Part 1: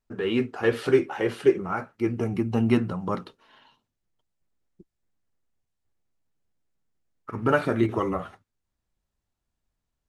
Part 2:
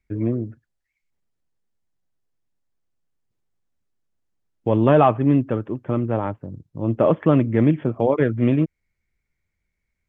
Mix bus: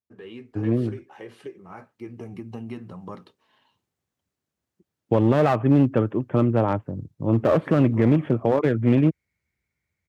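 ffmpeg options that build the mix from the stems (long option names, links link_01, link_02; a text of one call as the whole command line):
ffmpeg -i stem1.wav -i stem2.wav -filter_complex "[0:a]bandreject=frequency=1400:width=7.6,acompressor=threshold=-24dB:ratio=6,volume=-12.5dB[link_01];[1:a]aeval=exprs='clip(val(0),-1,0.141)':channel_layout=same,adelay=450,volume=0dB[link_02];[link_01][link_02]amix=inputs=2:normalize=0,highpass=frequency=65:width=0.5412,highpass=frequency=65:width=1.3066,dynaudnorm=framelen=280:gausssize=17:maxgain=11.5dB,alimiter=limit=-9dB:level=0:latency=1:release=148" out.wav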